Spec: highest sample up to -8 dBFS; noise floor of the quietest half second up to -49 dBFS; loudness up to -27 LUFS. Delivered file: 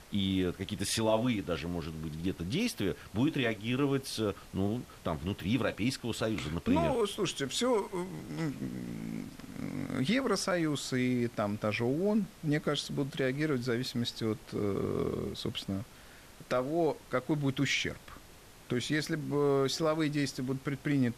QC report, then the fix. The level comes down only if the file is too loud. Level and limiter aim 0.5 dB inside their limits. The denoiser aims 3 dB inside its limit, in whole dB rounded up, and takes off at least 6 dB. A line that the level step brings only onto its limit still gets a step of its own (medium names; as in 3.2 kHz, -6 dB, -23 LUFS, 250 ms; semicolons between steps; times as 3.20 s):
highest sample -14.0 dBFS: pass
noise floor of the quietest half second -54 dBFS: pass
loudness -32.5 LUFS: pass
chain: none needed